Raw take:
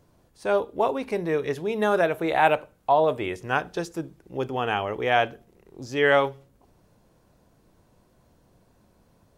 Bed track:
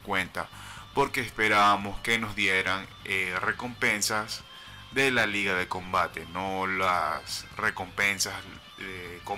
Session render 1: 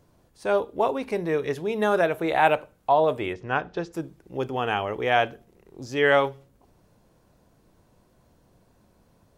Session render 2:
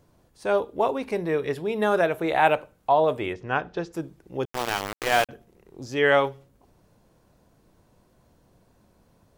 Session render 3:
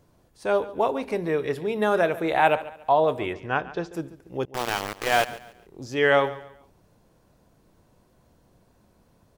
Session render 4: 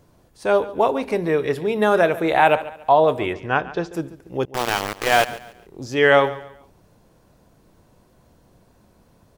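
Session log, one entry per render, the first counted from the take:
3.33–3.93 s: distance through air 170 m
1.22–1.87 s: band-stop 6.3 kHz, Q 5.8; 4.45–5.29 s: small samples zeroed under -22.5 dBFS
feedback delay 141 ms, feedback 32%, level -17 dB
trim +5 dB; peak limiter -2 dBFS, peak gain reduction 2 dB

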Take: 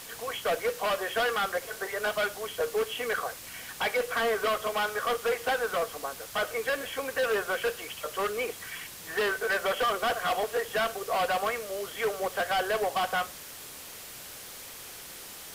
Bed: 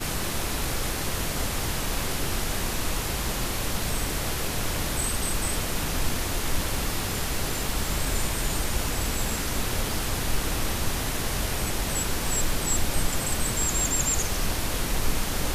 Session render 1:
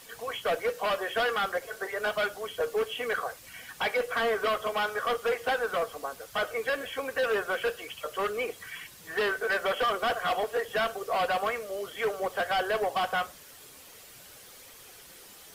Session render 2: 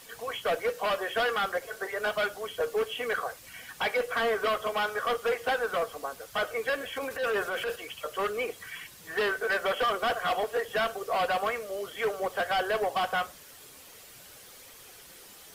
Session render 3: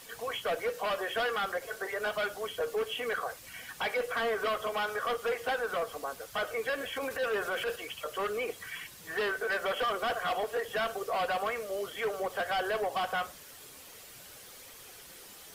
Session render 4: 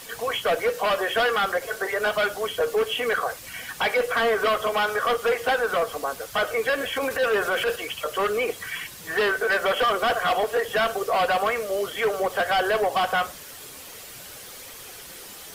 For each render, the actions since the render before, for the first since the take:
noise reduction 8 dB, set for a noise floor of -44 dBFS
6.96–7.76 s: transient shaper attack -9 dB, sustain +4 dB
peak limiter -25.5 dBFS, peak gain reduction 5.5 dB
trim +9 dB

